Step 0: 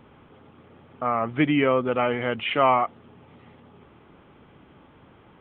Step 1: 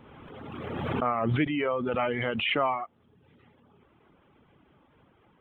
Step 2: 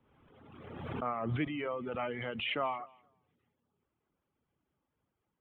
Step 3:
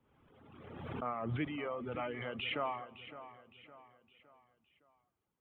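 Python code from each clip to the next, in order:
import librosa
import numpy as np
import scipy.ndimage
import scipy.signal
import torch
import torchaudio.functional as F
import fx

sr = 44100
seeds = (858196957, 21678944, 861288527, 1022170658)

y1 = fx.rider(x, sr, range_db=10, speed_s=0.5)
y1 = fx.dereverb_blind(y1, sr, rt60_s=0.86)
y1 = fx.pre_swell(y1, sr, db_per_s=26.0)
y1 = y1 * 10.0 ** (-5.0 / 20.0)
y2 = fx.echo_feedback(y1, sr, ms=236, feedback_pct=26, wet_db=-23)
y2 = fx.band_widen(y2, sr, depth_pct=40)
y2 = y2 * 10.0 ** (-9.0 / 20.0)
y3 = fx.echo_feedback(y2, sr, ms=562, feedback_pct=43, wet_db=-14)
y3 = y3 * 10.0 ** (-3.0 / 20.0)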